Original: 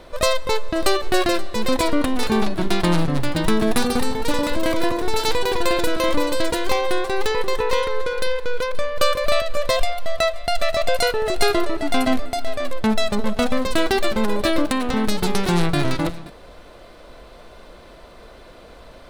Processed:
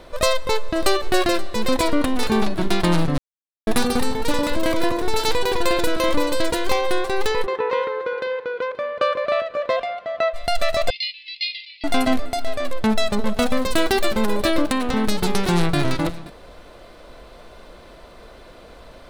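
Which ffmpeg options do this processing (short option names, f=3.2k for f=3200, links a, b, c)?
-filter_complex "[0:a]asplit=3[a][b][c];[a]afade=t=out:st=7.45:d=0.02[d];[b]highpass=220,lowpass=2.2k,afade=t=in:st=7.45:d=0.02,afade=t=out:st=10.33:d=0.02[e];[c]afade=t=in:st=10.33:d=0.02[f];[d][e][f]amix=inputs=3:normalize=0,asettb=1/sr,asplit=3[g][h][i];[g]atrim=end=10.904[j];[h]atrim=start=10.9:end=11.84,asetpts=PTS-STARTPTS,afade=t=in:d=0.004:c=qsin,afade=t=out:st=0.936:d=0.004:c=qsin,asuperpass=centerf=3300:order=20:qfactor=1.1[k];[i]atrim=start=11.836[l];[j][k]acrossfade=d=0.004:c1=hsin:c2=qsin[m];[m][l]acrossfade=d=0.004:c1=qsin:c2=hsin,asettb=1/sr,asplit=3[n][o][p];[n]atrim=end=13.344[q];[o]atrim=start=13.34:end=14.45,asetpts=PTS-STARTPTS,afade=t=in:d=0.004:c=qsin,afade=t=out:st=1.106:d=0.004:c=qsin,highshelf=f=8.7k:g=5.5[r];[p]atrim=start=14.446[s];[q][r]acrossfade=d=0.004:c1=hsin:c2=qsin[t];[t][s]acrossfade=d=0.004:c1=qsin:c2=hsin,asplit=3[u][v][w];[u]atrim=end=3.18,asetpts=PTS-STARTPTS,afade=t=out:st=3.176:d=0.004:c=hsin[x];[v]atrim=start=3.18:end=3.67,asetpts=PTS-STARTPTS,volume=0[y];[w]atrim=start=3.67,asetpts=PTS-STARTPTS,afade=t=in:d=0.004:c=hsin[z];[x][y][z]concat=n=3:v=0:a=1"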